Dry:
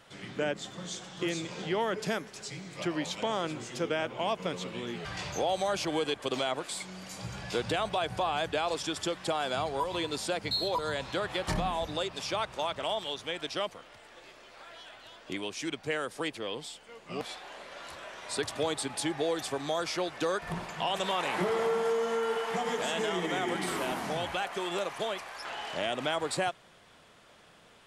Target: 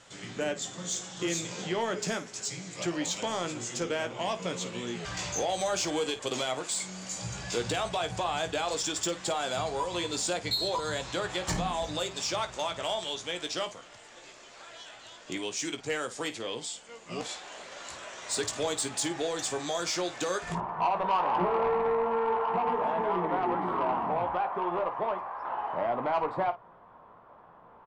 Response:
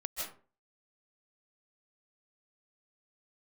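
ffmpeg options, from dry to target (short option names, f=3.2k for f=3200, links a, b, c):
-af "asetnsamples=n=441:p=0,asendcmd='20.55 lowpass f 1000',lowpass=f=7.2k:t=q:w=3.8,asoftclip=type=tanh:threshold=-21.5dB,aecho=1:1:17|53:0.376|0.2"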